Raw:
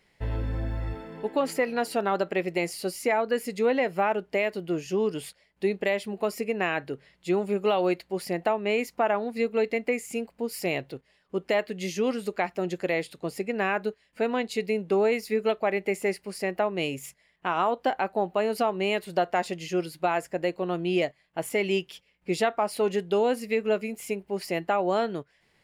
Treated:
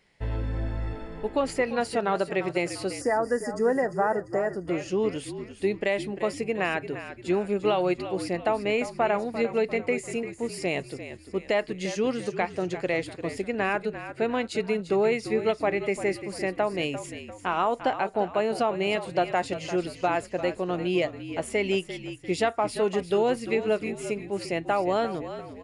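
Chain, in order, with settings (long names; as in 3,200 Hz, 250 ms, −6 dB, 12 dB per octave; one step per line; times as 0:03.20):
echo with shifted repeats 346 ms, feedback 45%, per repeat −50 Hz, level −11.5 dB
downsampling to 22,050 Hz
gain on a spectral selection 0:03.01–0:04.68, 2,000–4,600 Hz −24 dB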